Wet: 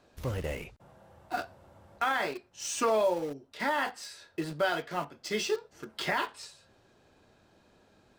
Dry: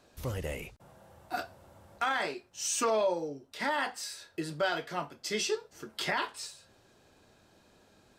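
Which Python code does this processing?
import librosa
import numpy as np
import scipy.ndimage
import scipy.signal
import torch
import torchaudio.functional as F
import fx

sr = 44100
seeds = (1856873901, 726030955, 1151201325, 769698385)

p1 = fx.high_shelf(x, sr, hz=5300.0, db=-9.0)
p2 = fx.quant_dither(p1, sr, seeds[0], bits=6, dither='none')
y = p1 + F.gain(torch.from_numpy(p2), -12.0).numpy()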